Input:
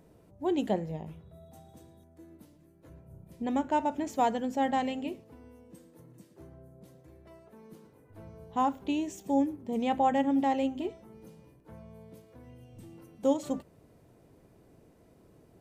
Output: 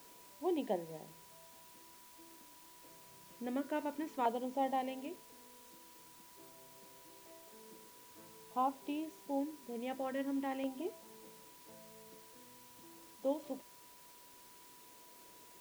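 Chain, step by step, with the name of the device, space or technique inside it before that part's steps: shortwave radio (band-pass 310–2900 Hz; tremolo 0.26 Hz, depth 38%; LFO notch saw down 0.47 Hz 640–1900 Hz; whistle 980 Hz -59 dBFS; white noise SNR 17 dB); trim -3.5 dB

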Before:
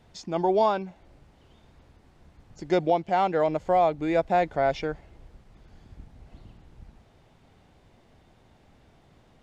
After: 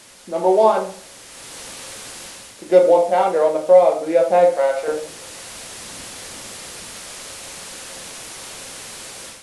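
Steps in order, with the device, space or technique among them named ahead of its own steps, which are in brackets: local Wiener filter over 15 samples; 4.46–4.88 s: high-pass 690 Hz 12 dB/octave; filmed off a television (band-pass 260–6100 Hz; peaking EQ 520 Hz +12 dB 0.34 oct; reverberation RT60 0.45 s, pre-delay 5 ms, DRR 0 dB; white noise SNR 21 dB; level rider gain up to 11 dB; trim -1 dB; AAC 96 kbps 24 kHz)

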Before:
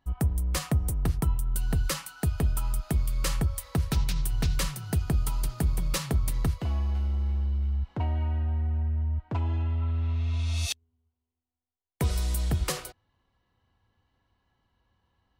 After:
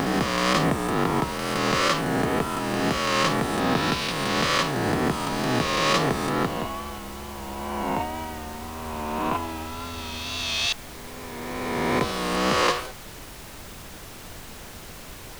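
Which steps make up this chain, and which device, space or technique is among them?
reverse spectral sustain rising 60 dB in 2.46 s; horn gramophone (band-pass 290–3900 Hz; peaking EQ 1.1 kHz +7 dB 0.22 oct; wow and flutter; pink noise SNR 14 dB); trim +7 dB

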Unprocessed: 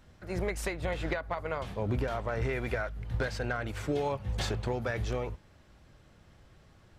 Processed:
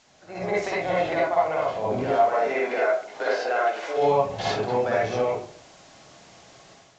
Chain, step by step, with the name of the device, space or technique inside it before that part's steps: 2.05–3.96 s: high-pass 210 Hz -> 440 Hz 24 dB/octave; filmed off a television (band-pass 240–6200 Hz; peaking EQ 720 Hz +10.5 dB 0.45 oct; reverberation RT60 0.50 s, pre-delay 47 ms, DRR -6 dB; white noise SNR 25 dB; level rider gain up to 8 dB; trim -6 dB; AAC 64 kbps 16 kHz)

